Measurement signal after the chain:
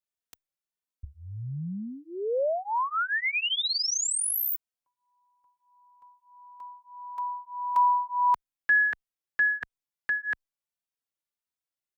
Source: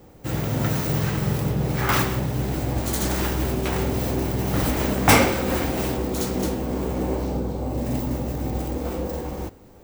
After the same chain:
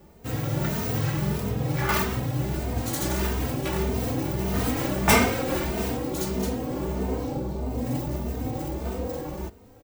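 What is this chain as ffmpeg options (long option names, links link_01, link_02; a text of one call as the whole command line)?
ffmpeg -i in.wav -filter_complex "[0:a]asplit=2[link_01][link_02];[link_02]adelay=3,afreqshift=1.6[link_03];[link_01][link_03]amix=inputs=2:normalize=1" out.wav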